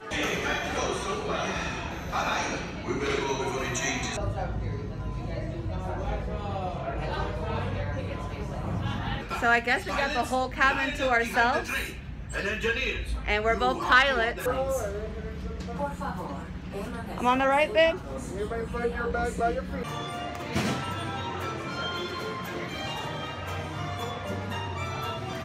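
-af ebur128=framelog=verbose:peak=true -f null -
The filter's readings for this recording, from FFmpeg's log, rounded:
Integrated loudness:
  I:         -28.8 LUFS
  Threshold: -38.8 LUFS
Loudness range:
  LRA:         7.1 LU
  Threshold: -48.7 LUFS
  LRA low:   -32.8 LUFS
  LRA high:  -25.7 LUFS
True peak:
  Peak:       -9.6 dBFS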